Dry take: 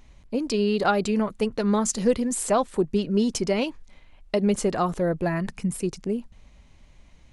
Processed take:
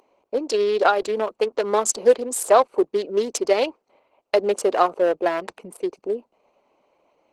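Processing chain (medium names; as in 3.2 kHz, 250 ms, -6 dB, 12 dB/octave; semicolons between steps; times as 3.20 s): local Wiener filter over 25 samples; high-pass 400 Hz 24 dB/octave; 0.86–1.63 s: compression 2:1, threshold -25 dBFS, peak gain reduction 5 dB; trim +8.5 dB; Opus 16 kbps 48 kHz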